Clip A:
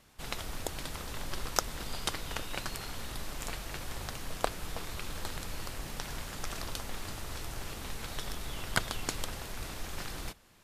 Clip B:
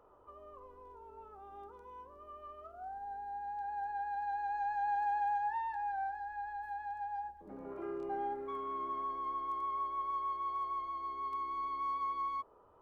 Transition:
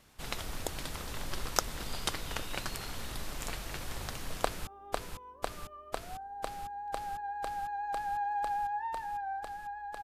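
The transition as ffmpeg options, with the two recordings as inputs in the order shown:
-filter_complex "[0:a]apad=whole_dur=10.03,atrim=end=10.03,atrim=end=4.672[s0];[1:a]atrim=start=1.378:end=6.74[s1];[s0][s1]acrossfade=d=0.004:c1=hsin:c2=hsin,asplit=2[s2][s3];[s3]afade=t=in:st=4.42:d=0.01,afade=t=out:st=4.67:d=0.01,aecho=0:1:500|1000|1500|2000|2500|3000|3500|4000|4500|5000|5500|6000:0.668344|0.568092|0.482878|0.410447|0.34888|0.296548|0.252066|0.214256|0.182117|0.1548|0.13158|0.111843[s4];[s2][s4]amix=inputs=2:normalize=0"

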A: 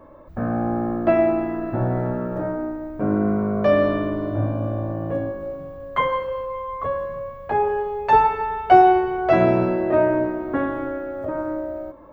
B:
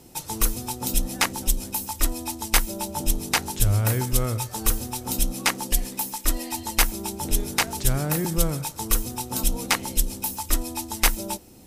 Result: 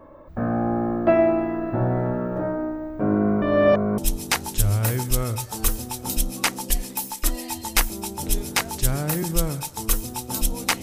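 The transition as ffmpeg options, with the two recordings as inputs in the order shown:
-filter_complex "[0:a]apad=whole_dur=10.82,atrim=end=10.82,asplit=2[s0][s1];[s0]atrim=end=3.422[s2];[s1]atrim=start=3.418:end=3.982,asetpts=PTS-STARTPTS,areverse[s3];[1:a]atrim=start=2.998:end=9.84[s4];[s2][s3]acrossfade=d=0.004:c1=hsin:c2=hsin[s5];[s5][s4]acrossfade=d=0.004:c1=hsin:c2=hsin"

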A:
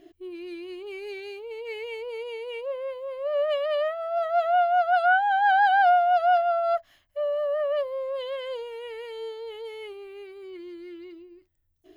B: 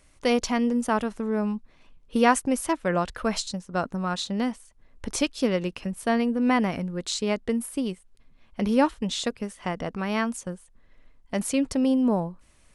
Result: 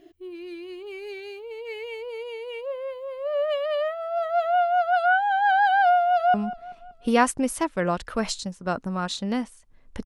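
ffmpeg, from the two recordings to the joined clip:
-filter_complex "[0:a]apad=whole_dur=10.05,atrim=end=10.05,atrim=end=6.342[s0];[1:a]atrim=start=1.418:end=5.13[s1];[s0][s1]acrossfade=d=0.004:c1=hsin:c2=hsin,asplit=2[s2][s3];[s3]afade=t=in:st=6:d=0.01,afade=t=out:st=6.34:d=0.01,aecho=0:1:190|380|570|760:0.158489|0.0792447|0.0396223|0.0198112[s4];[s2][s4]amix=inputs=2:normalize=0"

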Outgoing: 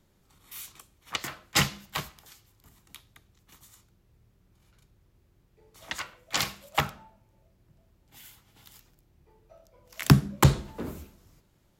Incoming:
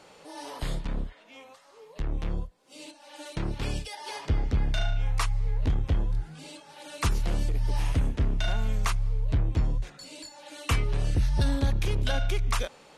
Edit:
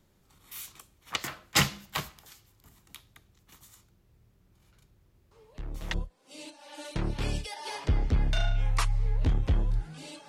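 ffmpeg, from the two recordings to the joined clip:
-filter_complex "[1:a]asplit=2[s0][s1];[0:a]apad=whole_dur=10.28,atrim=end=10.28,atrim=end=5.942[s2];[s1]atrim=start=2.348:end=6.69[s3];[s0]atrim=start=1.72:end=2.35,asetpts=PTS-STARTPTS,volume=0.398,afade=t=in:d=0.004:c=hsin,afade=t=out:st=0.626:d=0.004:c=hsin,adelay=5310[s4];[s2][s3]acrossfade=d=0.004:c1=hsin:c2=hsin[s5];[s5][s4]amix=inputs=2:normalize=0"

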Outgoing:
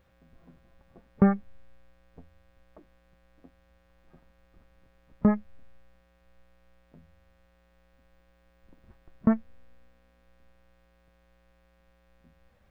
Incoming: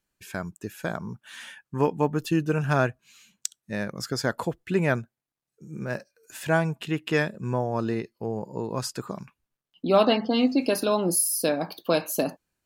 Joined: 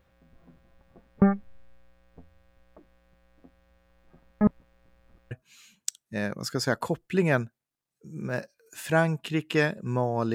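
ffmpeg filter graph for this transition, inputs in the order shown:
-filter_complex "[0:a]apad=whole_dur=10.34,atrim=end=10.34,asplit=2[s0][s1];[s0]atrim=end=4.412[s2];[s1]atrim=start=4.408:end=5.312,asetpts=PTS-STARTPTS,areverse[s3];[1:a]atrim=start=2.878:end=7.91[s4];[s2][s3]acrossfade=d=0.004:c1=hsin:c2=hsin[s5];[s5][s4]acrossfade=d=0.004:c1=hsin:c2=hsin"

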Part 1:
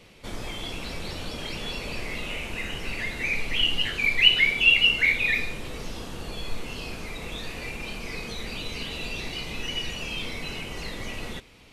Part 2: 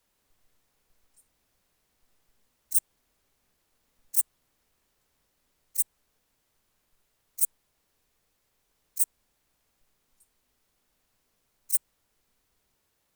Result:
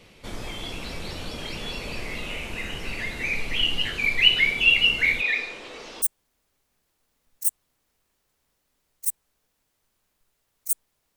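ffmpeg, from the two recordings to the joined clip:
-filter_complex "[0:a]asettb=1/sr,asplit=3[s0][s1][s2];[s0]atrim=end=5.214[s3];[s1]atrim=start=5.21:end=6.02,asetpts=PTS-STARTPTS,afade=t=in:d=0.004:c=qsin,afade=t=out:st=0.806:d=0.004:c=qsin,acrossover=split=300 7500:gain=0.0794 1 0.0891[s4][s5][s6];[s4][s5][s6]amix=inputs=3:normalize=0[s7];[s2]atrim=start=6.016[s8];[s3][s7]acrossfade=d=0.004:c1=hsin:c2=qsin[s9];[s9][s8]acrossfade=d=0.004:c1=qsin:c2=hsin,apad=whole_dur=11.16,atrim=end=11.16,atrim=end=6.022[s10];[1:a]atrim=start=2.738:end=7.88[s11];[s10][s11]acrossfade=d=0.004:c1=hsin:c2=hsin"

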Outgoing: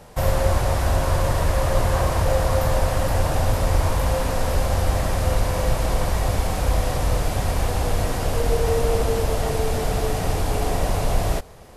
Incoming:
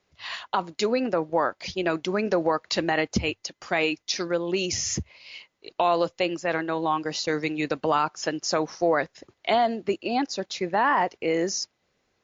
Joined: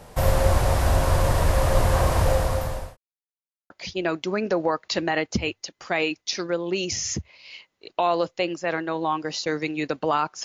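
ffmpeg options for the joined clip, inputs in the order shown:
-filter_complex "[0:a]apad=whole_dur=10.44,atrim=end=10.44,asplit=2[s0][s1];[s0]atrim=end=2.97,asetpts=PTS-STARTPTS,afade=t=out:st=2.25:d=0.72[s2];[s1]atrim=start=2.97:end=3.7,asetpts=PTS-STARTPTS,volume=0[s3];[1:a]atrim=start=1.51:end=8.25,asetpts=PTS-STARTPTS,afade=t=in:d=0.004:c=hsin[s4];[s2][s3][s4]concat=n=3:v=0:a=1"

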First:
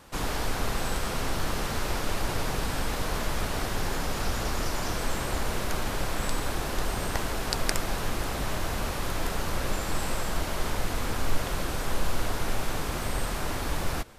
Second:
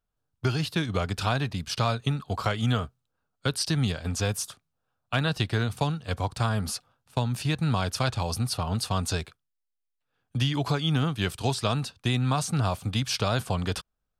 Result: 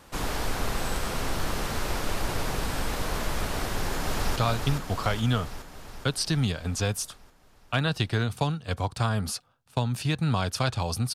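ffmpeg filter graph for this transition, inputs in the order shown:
-filter_complex "[0:a]apad=whole_dur=11.14,atrim=end=11.14,atrim=end=4.362[s0];[1:a]atrim=start=1.758:end=8.54[s1];[s0][s1]acrossfade=d=0.004:c1=hsin:c2=hsin,asplit=2[s2][s3];[s3]afade=t=in:st=3.63:d=0.01,afade=t=out:st=4.36:d=0.01,aecho=0:1:420|840|1260|1680|2100|2520|2940|3360|3780|4200:0.595662|0.38718|0.251667|0.163584|0.106329|0.0691141|0.0449242|0.0292007|0.0189805|0.0123373[s4];[s2][s4]amix=inputs=2:normalize=0"

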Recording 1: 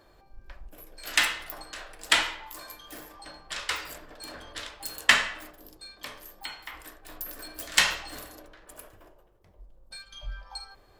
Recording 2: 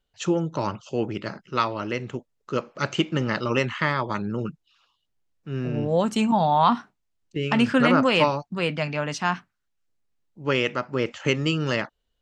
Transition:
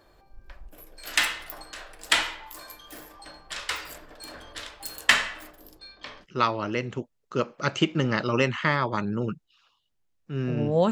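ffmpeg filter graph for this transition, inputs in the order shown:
-filter_complex "[0:a]asettb=1/sr,asplit=3[s0][s1][s2];[s0]atrim=end=5.794[s3];[s1]atrim=start=5.79:end=6.27,asetpts=PTS-STARTPTS,afade=t=in:d=0.004:c=qsin,afade=t=out:st=0.476:d=0.004:c=qsin,lowpass=f=5400:w=0.5412,lowpass=f=5400:w=1.3066[s4];[s2]atrim=start=6.266[s5];[s3][s4]acrossfade=d=0.004:c1=hsin:c2=qsin[s6];[s6][s5]acrossfade=d=0.004:c1=qsin:c2=hsin,apad=whole_dur=10.91,atrim=end=10.91,atrim=end=6.27,asetpts=PTS-STARTPTS[s7];[1:a]atrim=start=1.36:end=6.08,asetpts=PTS-STARTPTS[s8];[s7][s8]acrossfade=d=0.08:c1=tri:c2=tri"

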